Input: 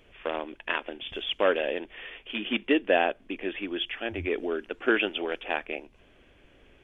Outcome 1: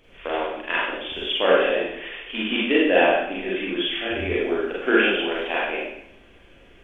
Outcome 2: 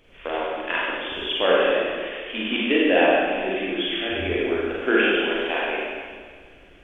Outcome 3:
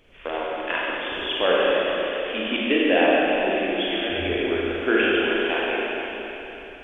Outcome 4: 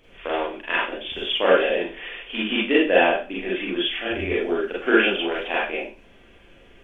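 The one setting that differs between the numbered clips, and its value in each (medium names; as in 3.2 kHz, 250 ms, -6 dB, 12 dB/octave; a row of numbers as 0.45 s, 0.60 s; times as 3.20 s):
Schroeder reverb, RT60: 0.75 s, 1.7 s, 3.6 s, 0.34 s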